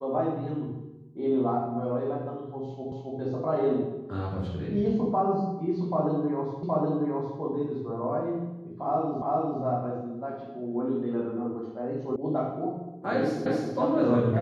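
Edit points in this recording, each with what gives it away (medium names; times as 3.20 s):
2.92 s: repeat of the last 0.27 s
6.63 s: repeat of the last 0.77 s
9.22 s: repeat of the last 0.4 s
12.16 s: sound stops dead
13.46 s: repeat of the last 0.27 s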